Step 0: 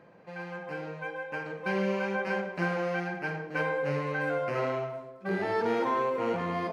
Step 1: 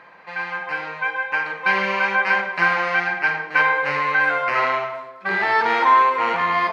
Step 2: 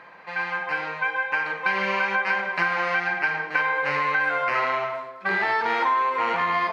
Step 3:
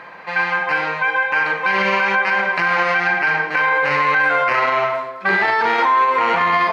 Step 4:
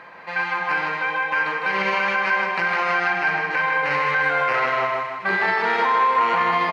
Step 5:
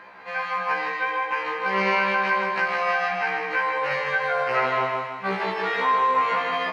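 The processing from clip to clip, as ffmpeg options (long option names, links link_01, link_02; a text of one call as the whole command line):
ffmpeg -i in.wav -af "equalizer=frequency=125:width_type=o:width=1:gain=-9,equalizer=frequency=250:width_type=o:width=1:gain=-4,equalizer=frequency=500:width_type=o:width=1:gain=-4,equalizer=frequency=1000:width_type=o:width=1:gain=11,equalizer=frequency=2000:width_type=o:width=1:gain=11,equalizer=frequency=4000:width_type=o:width=1:gain=9,volume=3.5dB" out.wav
ffmpeg -i in.wav -af "acompressor=threshold=-20dB:ratio=5" out.wav
ffmpeg -i in.wav -af "alimiter=limit=-17.5dB:level=0:latency=1:release=15,volume=9dB" out.wav
ffmpeg -i in.wav -af "aecho=1:1:156|312|468|624|780|936|1092:0.531|0.287|0.155|0.0836|0.0451|0.0244|0.0132,volume=-5dB" out.wav
ffmpeg -i in.wav -af "afftfilt=real='re*1.73*eq(mod(b,3),0)':imag='im*1.73*eq(mod(b,3),0)':win_size=2048:overlap=0.75" out.wav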